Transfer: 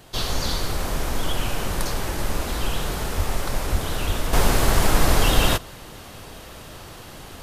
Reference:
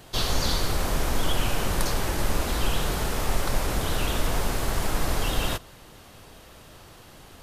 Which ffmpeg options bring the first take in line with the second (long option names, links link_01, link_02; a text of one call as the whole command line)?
ffmpeg -i in.wav -filter_complex "[0:a]asplit=3[link_01][link_02][link_03];[link_01]afade=type=out:start_time=3.16:duration=0.02[link_04];[link_02]highpass=frequency=140:width=0.5412,highpass=frequency=140:width=1.3066,afade=type=in:start_time=3.16:duration=0.02,afade=type=out:start_time=3.28:duration=0.02[link_05];[link_03]afade=type=in:start_time=3.28:duration=0.02[link_06];[link_04][link_05][link_06]amix=inputs=3:normalize=0,asplit=3[link_07][link_08][link_09];[link_07]afade=type=out:start_time=3.71:duration=0.02[link_10];[link_08]highpass=frequency=140:width=0.5412,highpass=frequency=140:width=1.3066,afade=type=in:start_time=3.71:duration=0.02,afade=type=out:start_time=3.83:duration=0.02[link_11];[link_09]afade=type=in:start_time=3.83:duration=0.02[link_12];[link_10][link_11][link_12]amix=inputs=3:normalize=0,asplit=3[link_13][link_14][link_15];[link_13]afade=type=out:start_time=4.06:duration=0.02[link_16];[link_14]highpass=frequency=140:width=0.5412,highpass=frequency=140:width=1.3066,afade=type=in:start_time=4.06:duration=0.02,afade=type=out:start_time=4.18:duration=0.02[link_17];[link_15]afade=type=in:start_time=4.18:duration=0.02[link_18];[link_16][link_17][link_18]amix=inputs=3:normalize=0,asetnsamples=nb_out_samples=441:pad=0,asendcmd='4.33 volume volume -8dB',volume=0dB" out.wav